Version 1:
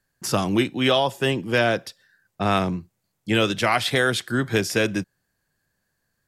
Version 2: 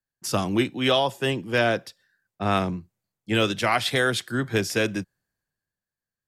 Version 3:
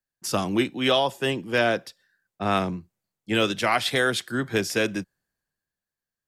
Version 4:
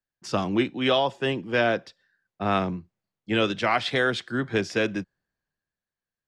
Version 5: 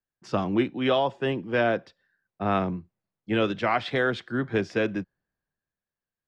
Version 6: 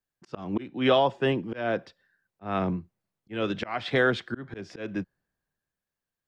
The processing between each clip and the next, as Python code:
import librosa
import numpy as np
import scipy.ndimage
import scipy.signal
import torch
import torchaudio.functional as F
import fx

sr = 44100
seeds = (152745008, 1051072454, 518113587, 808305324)

y1 = fx.band_widen(x, sr, depth_pct=40)
y1 = F.gain(torch.from_numpy(y1), -2.0).numpy()
y2 = fx.peak_eq(y1, sr, hz=110.0, db=-5.0, octaves=0.78)
y3 = fx.air_absorb(y2, sr, metres=120.0)
y4 = fx.lowpass(y3, sr, hz=1900.0, slope=6)
y5 = fx.auto_swell(y4, sr, attack_ms=298.0)
y5 = F.gain(torch.from_numpy(y5), 2.0).numpy()